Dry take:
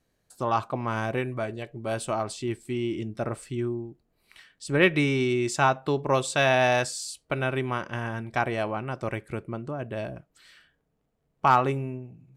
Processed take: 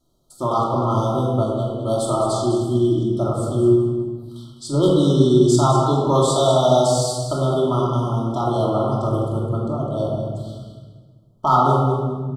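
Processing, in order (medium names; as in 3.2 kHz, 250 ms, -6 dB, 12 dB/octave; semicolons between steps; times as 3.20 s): de-hum 58.18 Hz, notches 31; in parallel at +1.5 dB: peak limiter -17 dBFS, peak gain reduction 10 dB; on the sum: hard clipper -6.5 dBFS, distortion -40 dB; brick-wall FIR band-stop 1.4–3 kHz; on a send: feedback delay 206 ms, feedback 23%, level -10 dB; on the sum: simulated room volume 1200 m³, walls mixed, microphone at 2.8 m; trim -3.5 dB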